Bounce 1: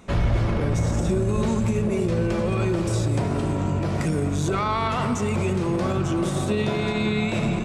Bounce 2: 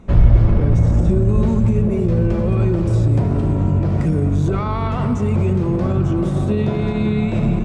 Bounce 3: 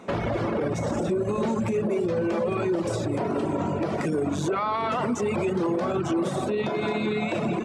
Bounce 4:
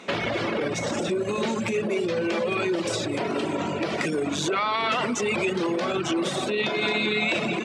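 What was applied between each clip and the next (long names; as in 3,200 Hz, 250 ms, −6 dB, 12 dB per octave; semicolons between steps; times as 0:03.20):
spectral tilt −3 dB per octave; level −1 dB
reverb reduction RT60 0.88 s; high-pass filter 370 Hz 12 dB per octave; brickwall limiter −24.5 dBFS, peak gain reduction 9.5 dB; level +6.5 dB
meter weighting curve D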